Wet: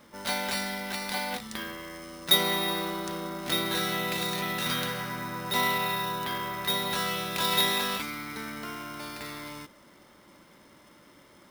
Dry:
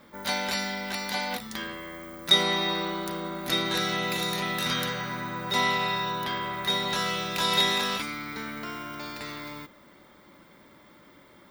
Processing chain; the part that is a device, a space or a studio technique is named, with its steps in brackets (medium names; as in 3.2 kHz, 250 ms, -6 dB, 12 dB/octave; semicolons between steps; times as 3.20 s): early companding sampler (sample-rate reducer 15 kHz, jitter 0%; companded quantiser 6-bit); trim -1.5 dB